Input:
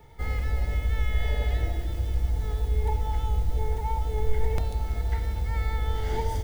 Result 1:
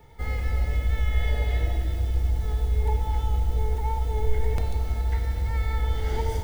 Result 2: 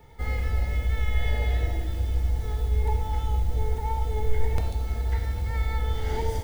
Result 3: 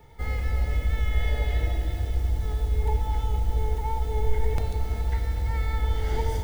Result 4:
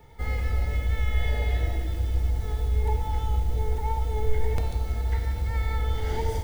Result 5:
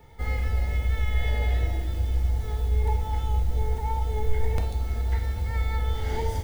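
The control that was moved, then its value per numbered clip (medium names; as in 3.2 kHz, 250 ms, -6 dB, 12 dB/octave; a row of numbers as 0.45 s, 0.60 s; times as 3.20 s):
gated-style reverb, gate: 350 ms, 130 ms, 530 ms, 210 ms, 80 ms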